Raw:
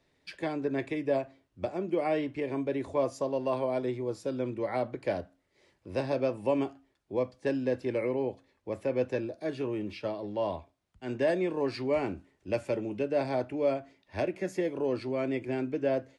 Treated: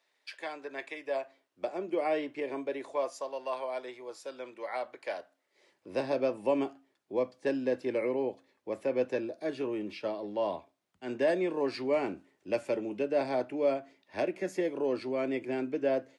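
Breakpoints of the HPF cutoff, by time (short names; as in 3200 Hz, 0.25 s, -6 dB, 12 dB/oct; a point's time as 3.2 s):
1.01 s 760 Hz
1.75 s 350 Hz
2.49 s 350 Hz
3.26 s 750 Hz
5.17 s 750 Hz
5.96 s 220 Hz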